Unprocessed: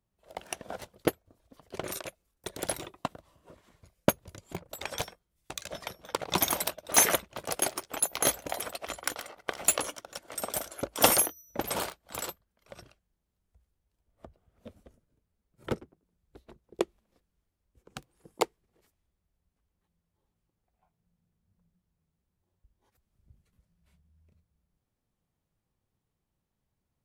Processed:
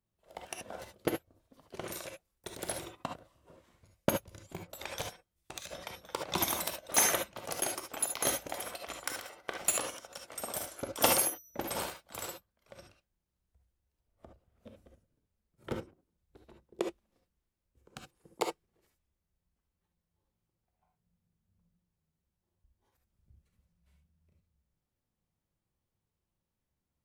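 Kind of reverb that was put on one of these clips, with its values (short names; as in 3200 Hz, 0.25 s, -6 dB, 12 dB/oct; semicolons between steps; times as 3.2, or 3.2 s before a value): non-linear reverb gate 90 ms rising, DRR 3 dB; gain -5.5 dB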